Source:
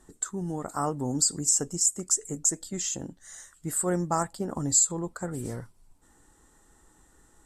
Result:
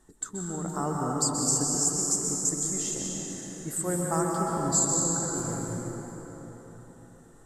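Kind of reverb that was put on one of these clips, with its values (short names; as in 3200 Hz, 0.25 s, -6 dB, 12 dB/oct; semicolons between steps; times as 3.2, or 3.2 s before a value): plate-style reverb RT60 4.5 s, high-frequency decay 0.55×, pre-delay 0.115 s, DRR -3 dB; gain -3.5 dB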